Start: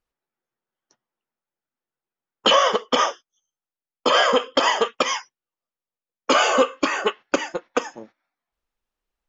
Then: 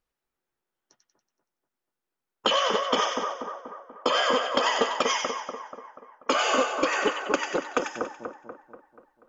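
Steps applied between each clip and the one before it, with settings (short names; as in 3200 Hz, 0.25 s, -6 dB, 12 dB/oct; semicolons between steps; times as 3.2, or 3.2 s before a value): compressor, threshold -21 dBFS, peak gain reduction 9.5 dB; on a send: split-band echo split 1500 Hz, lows 0.242 s, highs 94 ms, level -4.5 dB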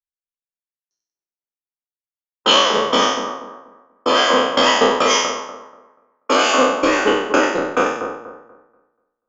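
spectral trails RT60 1.16 s; three-band expander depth 100%; gain +5 dB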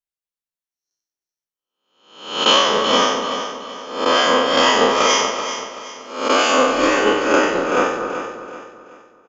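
spectral swells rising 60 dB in 0.62 s; on a send: feedback echo 0.381 s, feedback 36%, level -10 dB; on the sum: gain -2 dB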